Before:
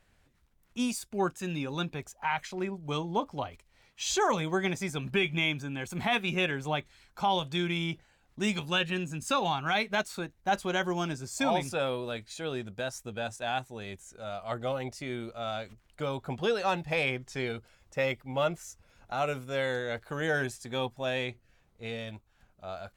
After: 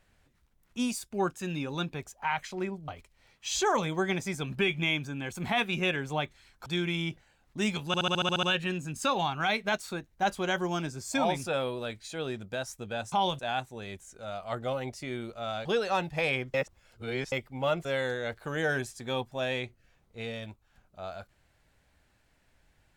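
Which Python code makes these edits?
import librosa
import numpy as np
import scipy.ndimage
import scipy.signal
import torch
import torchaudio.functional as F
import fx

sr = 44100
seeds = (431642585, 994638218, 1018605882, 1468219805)

y = fx.edit(x, sr, fx.cut(start_s=2.88, length_s=0.55),
    fx.move(start_s=7.21, length_s=0.27, to_s=13.38),
    fx.stutter(start_s=8.69, slice_s=0.07, count=9),
    fx.cut(start_s=15.64, length_s=0.75),
    fx.reverse_span(start_s=17.28, length_s=0.78),
    fx.cut(start_s=18.59, length_s=0.91), tone=tone)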